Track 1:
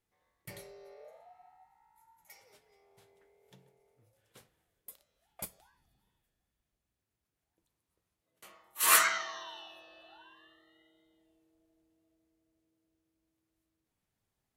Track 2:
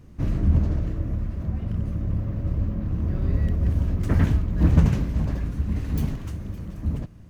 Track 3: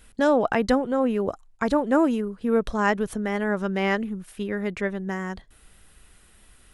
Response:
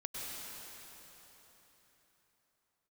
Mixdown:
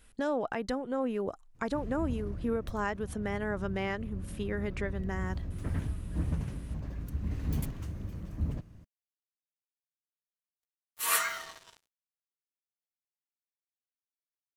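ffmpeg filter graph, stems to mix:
-filter_complex "[0:a]aecho=1:1:4.3:0.48,acrusher=bits=5:mix=0:aa=0.5,adelay=2200,volume=0.531[s0];[1:a]adelay=1550,volume=0.299,afade=t=in:st=6.83:d=0.7:silence=0.421697[s1];[2:a]acompressor=threshold=0.0282:ratio=1.5,volume=0.422[s2];[s1][s2]amix=inputs=2:normalize=0,dynaudnorm=f=130:g=3:m=1.68,alimiter=limit=0.0891:level=0:latency=1:release=374,volume=1[s3];[s0][s3]amix=inputs=2:normalize=0,equalizer=f=210:w=6.1:g=-2.5"

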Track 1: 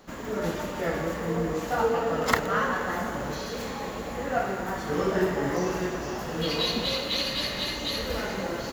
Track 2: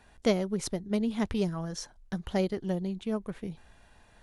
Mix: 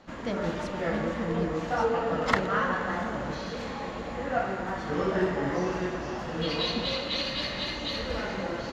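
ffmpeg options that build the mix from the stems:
-filter_complex "[0:a]volume=0.891[s0];[1:a]volume=0.447[s1];[s0][s1]amix=inputs=2:normalize=0,lowpass=4500,bandreject=f=420:w=12"

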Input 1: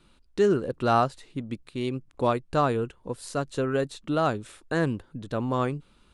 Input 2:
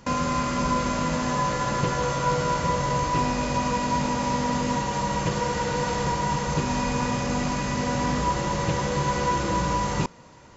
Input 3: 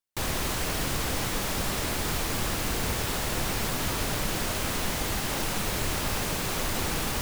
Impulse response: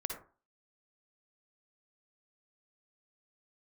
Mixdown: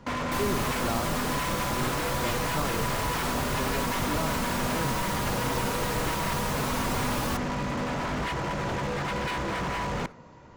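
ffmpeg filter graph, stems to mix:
-filter_complex "[0:a]volume=0.376[s0];[1:a]lowpass=f=1700:p=1,aeval=exprs='0.0562*(abs(mod(val(0)/0.0562+3,4)-2)-1)':c=same,volume=0.891,asplit=2[s1][s2];[s2]volume=0.168[s3];[2:a]equalizer=f=1100:w=1.5:g=8,asplit=2[s4][s5];[s5]adelay=4.2,afreqshift=1.7[s6];[s4][s6]amix=inputs=2:normalize=1,adelay=150,volume=0.891[s7];[3:a]atrim=start_sample=2205[s8];[s3][s8]afir=irnorm=-1:irlink=0[s9];[s0][s1][s7][s9]amix=inputs=4:normalize=0,acrossover=split=410|3000[s10][s11][s12];[s11]acompressor=threshold=0.0398:ratio=6[s13];[s10][s13][s12]amix=inputs=3:normalize=0"

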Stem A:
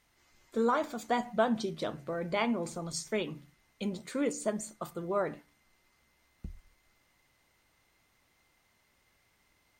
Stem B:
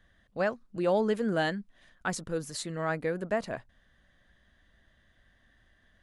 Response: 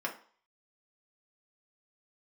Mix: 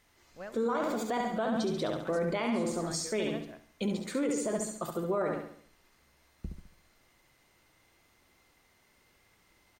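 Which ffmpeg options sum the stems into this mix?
-filter_complex "[0:a]equalizer=f=380:w=1.5:g=3.5,volume=1.33,asplit=2[s0][s1];[s1]volume=0.531[s2];[1:a]volume=0.168,asplit=2[s3][s4];[s4]volume=0.188[s5];[s2][s5]amix=inputs=2:normalize=0,aecho=0:1:69|138|207|276|345|414:1|0.44|0.194|0.0852|0.0375|0.0165[s6];[s0][s3][s6]amix=inputs=3:normalize=0,alimiter=limit=0.0708:level=0:latency=1:release=22"

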